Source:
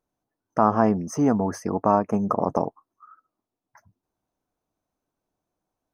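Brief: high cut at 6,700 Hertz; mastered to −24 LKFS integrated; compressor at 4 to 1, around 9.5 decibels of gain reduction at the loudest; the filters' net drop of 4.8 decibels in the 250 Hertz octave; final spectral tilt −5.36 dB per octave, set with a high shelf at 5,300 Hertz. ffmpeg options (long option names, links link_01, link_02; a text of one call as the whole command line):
ffmpeg -i in.wav -af "lowpass=6700,equalizer=frequency=250:width_type=o:gain=-6,highshelf=frequency=5300:gain=3.5,acompressor=threshold=-26dB:ratio=4,volume=8dB" out.wav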